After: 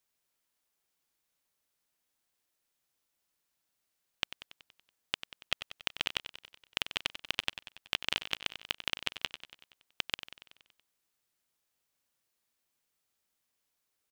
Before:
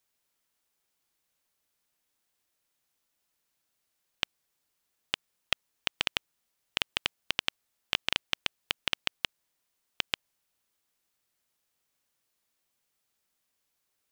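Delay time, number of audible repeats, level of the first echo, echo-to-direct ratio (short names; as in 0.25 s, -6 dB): 94 ms, 6, -12.0 dB, -10.0 dB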